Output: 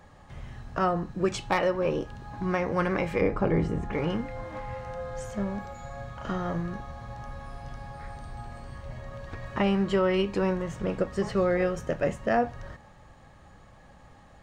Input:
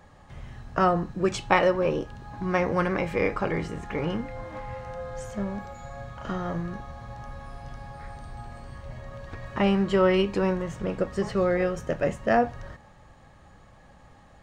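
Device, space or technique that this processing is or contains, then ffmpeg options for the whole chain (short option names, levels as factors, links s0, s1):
clipper into limiter: -filter_complex "[0:a]asoftclip=type=hard:threshold=0.299,alimiter=limit=0.178:level=0:latency=1:release=433,asettb=1/sr,asplit=3[s0][s1][s2];[s0]atrim=end=3.214[s3];[s1]atrim=start=3.21:end=3.93,asetpts=PTS-STARTPTS,afade=t=in:d=0.004:c=qsin,afade=t=out:st=0.716:d=0.004:c=qsin,tiltshelf=f=890:g=6.5[s4];[s2]atrim=start=3.926[s5];[s3][s4]acrossfade=d=0.004:c1=hsin:c2=qsin[s6];[s6][s5]acrossfade=d=0.004:c1=qsin:c2=hsin"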